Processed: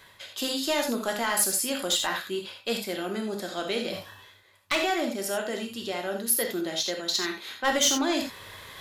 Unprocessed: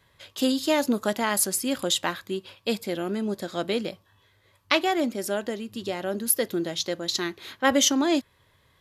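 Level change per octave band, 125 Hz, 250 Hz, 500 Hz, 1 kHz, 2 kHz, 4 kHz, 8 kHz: −5.5, −5.0, −2.5, −1.5, 0.0, +0.5, +0.5 decibels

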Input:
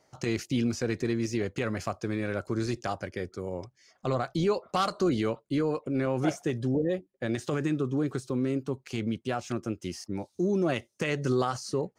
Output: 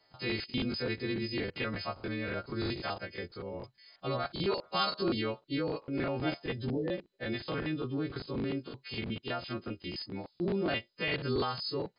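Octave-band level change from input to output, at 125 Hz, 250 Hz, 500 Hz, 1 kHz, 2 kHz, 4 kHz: −6.0, −6.0, −5.5, −4.0, 0.0, +4.0 decibels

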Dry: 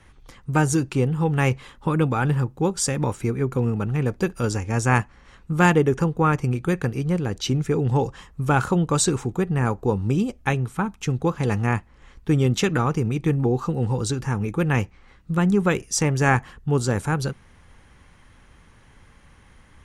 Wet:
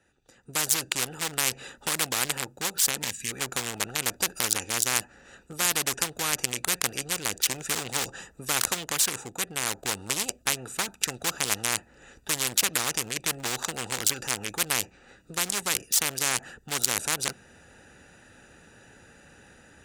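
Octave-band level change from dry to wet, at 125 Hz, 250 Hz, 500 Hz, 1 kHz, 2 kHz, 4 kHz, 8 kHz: −21.5, −17.5, −13.5, −8.0, −2.5, +7.5, +7.0 decibels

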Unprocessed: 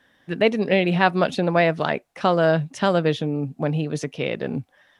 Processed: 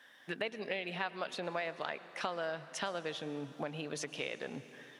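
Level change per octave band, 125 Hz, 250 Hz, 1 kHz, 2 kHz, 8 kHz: −24.0 dB, −21.0 dB, −17.0 dB, −14.0 dB, can't be measured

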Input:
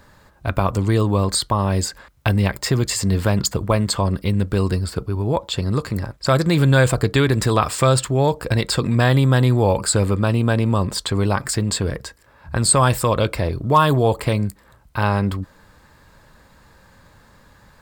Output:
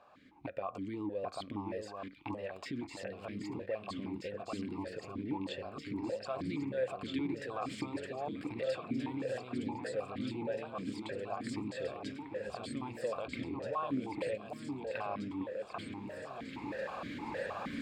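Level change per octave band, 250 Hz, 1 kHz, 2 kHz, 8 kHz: −16.0, −19.0, −19.0, −33.0 decibels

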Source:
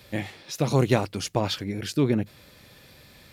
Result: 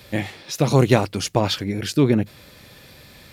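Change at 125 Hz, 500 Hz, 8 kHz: +5.5, +5.5, +5.5 decibels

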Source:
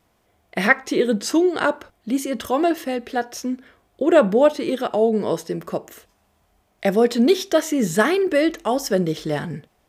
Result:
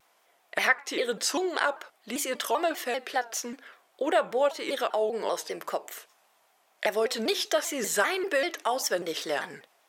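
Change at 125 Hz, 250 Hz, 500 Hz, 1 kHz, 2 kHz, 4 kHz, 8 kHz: below −20 dB, −16.0 dB, −9.0 dB, −4.5 dB, −4.5 dB, −1.0 dB, 0.0 dB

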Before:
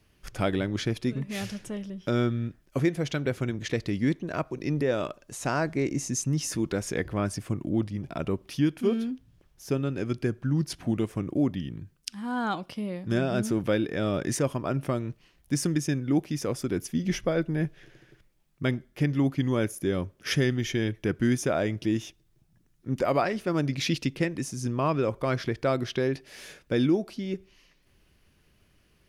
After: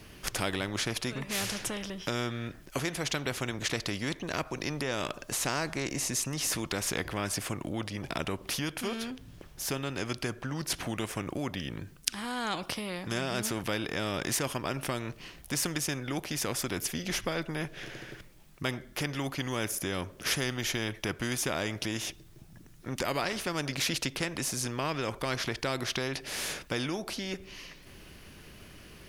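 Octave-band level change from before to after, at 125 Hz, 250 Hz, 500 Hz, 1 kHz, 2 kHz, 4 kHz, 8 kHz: −8.0, −8.5, −7.0, −2.0, +1.5, +4.5, +4.5 decibels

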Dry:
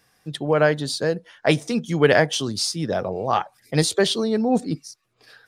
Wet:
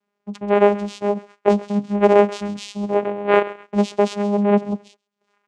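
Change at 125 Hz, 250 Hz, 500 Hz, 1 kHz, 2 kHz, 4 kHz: can't be measured, +3.0 dB, +4.0 dB, +4.0 dB, −4.0 dB, −10.5 dB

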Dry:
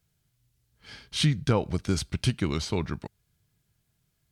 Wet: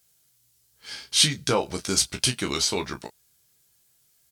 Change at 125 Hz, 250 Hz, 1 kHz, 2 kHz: −7.0, −2.5, +4.5, +5.5 decibels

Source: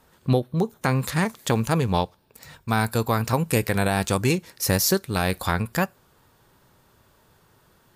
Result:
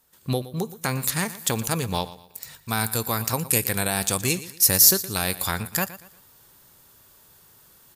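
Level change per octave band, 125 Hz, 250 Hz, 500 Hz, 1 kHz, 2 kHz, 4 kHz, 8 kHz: −5.5, −5.0, −5.0, −4.0, −1.5, +4.0, +8.5 decibels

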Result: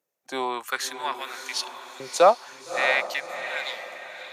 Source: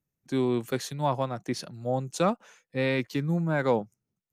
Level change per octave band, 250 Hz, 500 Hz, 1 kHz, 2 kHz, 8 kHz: −12.5, +2.5, +6.5, +9.0, +7.0 decibels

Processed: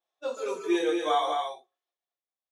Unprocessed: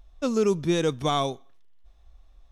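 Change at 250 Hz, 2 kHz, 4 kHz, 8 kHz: −4.5, +0.5, −3.0, −7.0 decibels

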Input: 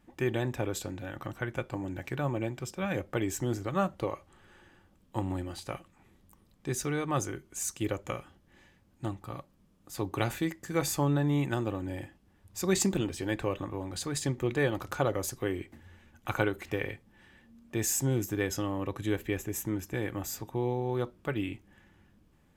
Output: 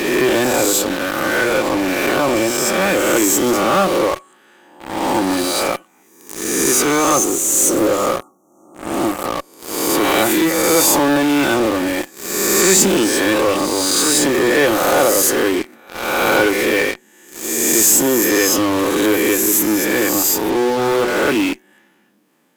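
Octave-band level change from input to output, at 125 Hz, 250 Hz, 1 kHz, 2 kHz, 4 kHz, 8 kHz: +1.5, +16.0, +19.0, +20.0, +22.0, +22.0 decibels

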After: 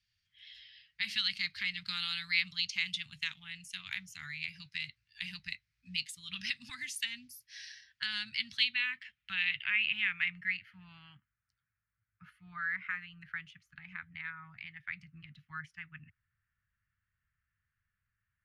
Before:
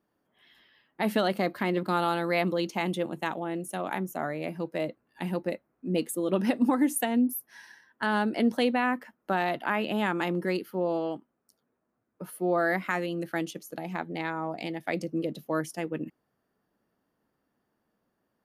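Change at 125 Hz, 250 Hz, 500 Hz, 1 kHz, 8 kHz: −17.5 dB, −27.0 dB, below −40 dB, −21.5 dB, −8.5 dB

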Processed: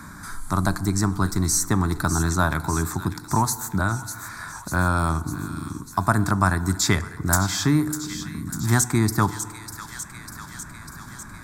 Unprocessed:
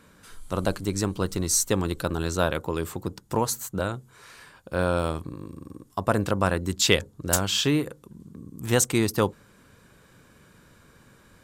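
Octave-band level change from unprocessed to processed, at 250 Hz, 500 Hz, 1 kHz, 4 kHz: +4.0, −5.0, +6.0, −3.0 decibels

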